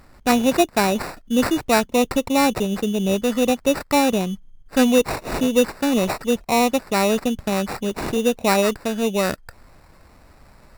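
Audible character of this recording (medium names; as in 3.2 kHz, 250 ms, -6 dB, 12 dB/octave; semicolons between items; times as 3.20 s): aliases and images of a low sample rate 3.2 kHz, jitter 0%; Vorbis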